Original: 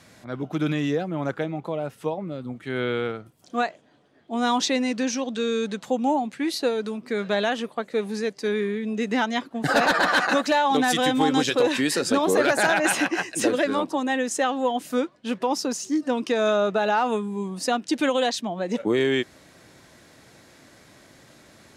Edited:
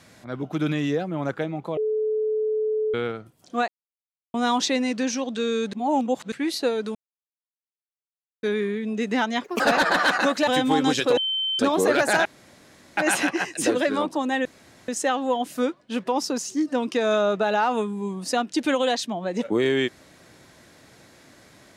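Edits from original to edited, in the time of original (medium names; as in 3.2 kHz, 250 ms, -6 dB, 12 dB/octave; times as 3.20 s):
1.77–2.94 s: bleep 432 Hz -21 dBFS
3.68–4.34 s: mute
5.73–6.32 s: reverse
6.95–8.43 s: mute
9.44–9.69 s: speed 154%
10.56–10.97 s: delete
11.67–12.09 s: bleep 3.09 kHz -22.5 dBFS
12.75 s: insert room tone 0.72 s
14.23 s: insert room tone 0.43 s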